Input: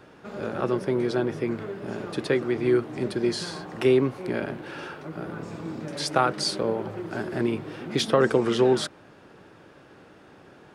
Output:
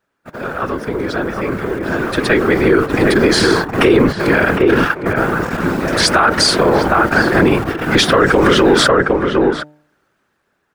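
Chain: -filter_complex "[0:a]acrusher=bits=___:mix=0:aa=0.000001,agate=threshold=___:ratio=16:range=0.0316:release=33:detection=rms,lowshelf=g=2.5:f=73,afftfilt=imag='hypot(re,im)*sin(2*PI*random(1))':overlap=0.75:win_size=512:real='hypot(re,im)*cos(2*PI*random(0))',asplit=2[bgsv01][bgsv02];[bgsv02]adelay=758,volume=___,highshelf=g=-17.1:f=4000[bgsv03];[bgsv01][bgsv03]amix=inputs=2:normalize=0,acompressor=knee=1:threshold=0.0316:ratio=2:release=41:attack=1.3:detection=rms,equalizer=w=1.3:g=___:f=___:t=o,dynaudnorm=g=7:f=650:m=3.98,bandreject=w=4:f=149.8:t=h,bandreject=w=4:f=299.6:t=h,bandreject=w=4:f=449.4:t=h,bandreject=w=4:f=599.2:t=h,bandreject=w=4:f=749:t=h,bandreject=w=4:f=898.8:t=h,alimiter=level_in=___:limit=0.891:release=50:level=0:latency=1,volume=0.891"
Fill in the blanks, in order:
8, 0.0126, 0.398, 9, 1500, 3.98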